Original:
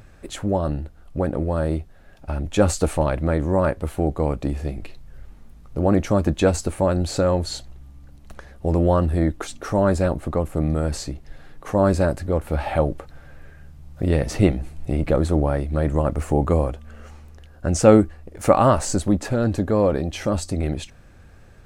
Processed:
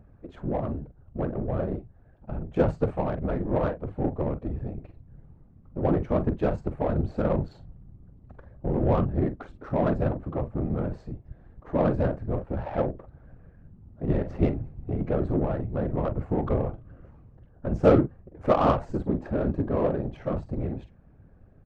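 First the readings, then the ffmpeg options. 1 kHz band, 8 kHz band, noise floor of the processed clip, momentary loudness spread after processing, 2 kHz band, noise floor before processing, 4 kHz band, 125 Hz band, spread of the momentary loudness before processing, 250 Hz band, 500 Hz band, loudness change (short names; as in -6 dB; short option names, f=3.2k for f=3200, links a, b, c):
-6.0 dB, under -30 dB, -55 dBFS, 13 LU, -9.0 dB, -47 dBFS, under -15 dB, -6.0 dB, 12 LU, -6.0 dB, -6.0 dB, -6.0 dB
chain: -filter_complex "[0:a]asplit=2[a][b];[b]adelay=45,volume=-10dB[c];[a][c]amix=inputs=2:normalize=0,afftfilt=real='hypot(re,im)*cos(2*PI*random(0))':imag='hypot(re,im)*sin(2*PI*random(1))':win_size=512:overlap=0.75,adynamicsmooth=sensitivity=1:basefreq=1k"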